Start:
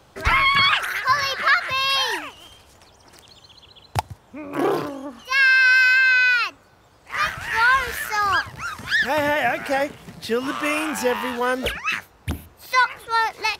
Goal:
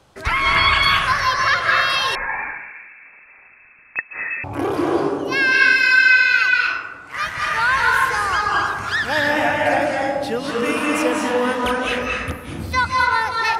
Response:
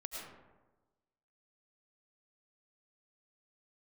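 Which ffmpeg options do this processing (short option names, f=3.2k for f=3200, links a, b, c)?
-filter_complex "[1:a]atrim=start_sample=2205,asetrate=22491,aresample=44100[a];[0:a][a]afir=irnorm=-1:irlink=0,asettb=1/sr,asplit=3[b][c][d];[b]atrim=end=2.154[e];[c]atrim=start=2.15:end=4.44,asetpts=PTS-STARTPTS,afade=t=in:d=0.004:c=qsin,afade=t=out:st=2.286:d=0.004:c=qsin,lowpass=f=2.3k:t=q:w=0.5098,lowpass=f=2.3k:t=q:w=0.6013,lowpass=f=2.3k:t=q:w=0.9,lowpass=f=2.3k:t=q:w=2.563,afreqshift=-2700[f];[d]atrim=start=4.436[g];[e][f]acrossfade=d=0.004:c1=hsin:c2=qsin[h];[h][g]acrossfade=d=0.004:c1=qsin:c2=hsin"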